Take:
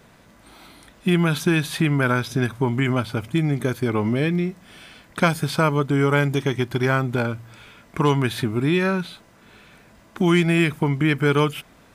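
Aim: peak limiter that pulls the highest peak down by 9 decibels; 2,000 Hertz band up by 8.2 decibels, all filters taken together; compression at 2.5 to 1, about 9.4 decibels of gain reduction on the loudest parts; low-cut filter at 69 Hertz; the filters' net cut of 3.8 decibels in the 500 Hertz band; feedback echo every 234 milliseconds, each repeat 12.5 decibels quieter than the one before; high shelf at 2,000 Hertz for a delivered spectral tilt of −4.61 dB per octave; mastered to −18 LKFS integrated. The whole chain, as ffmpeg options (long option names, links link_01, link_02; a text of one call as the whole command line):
ffmpeg -i in.wav -af "highpass=69,equalizer=frequency=500:width_type=o:gain=-6,highshelf=frequency=2000:gain=6,equalizer=frequency=2000:width_type=o:gain=7.5,acompressor=threshold=-24dB:ratio=2.5,alimiter=limit=-17dB:level=0:latency=1,aecho=1:1:234|468|702:0.237|0.0569|0.0137,volume=10.5dB" out.wav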